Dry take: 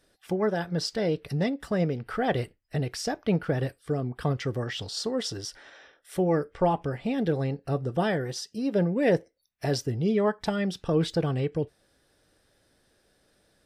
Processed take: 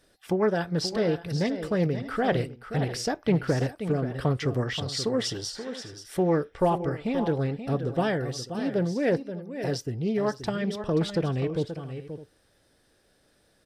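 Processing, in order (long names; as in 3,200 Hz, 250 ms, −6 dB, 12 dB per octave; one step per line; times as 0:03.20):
speech leveller 2 s
multi-tap delay 530/608 ms −10/−18 dB
highs frequency-modulated by the lows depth 0.21 ms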